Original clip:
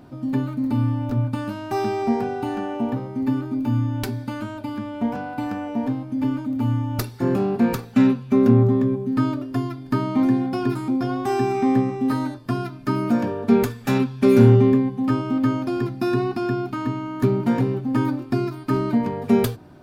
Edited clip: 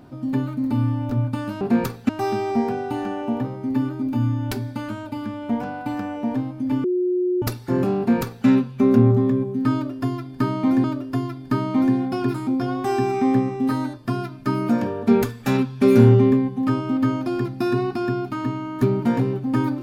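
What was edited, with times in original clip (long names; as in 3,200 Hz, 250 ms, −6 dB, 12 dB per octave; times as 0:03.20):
0:06.36–0:06.94: beep over 361 Hz −18 dBFS
0:07.50–0:07.98: duplicate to 0:01.61
0:09.25–0:10.36: repeat, 2 plays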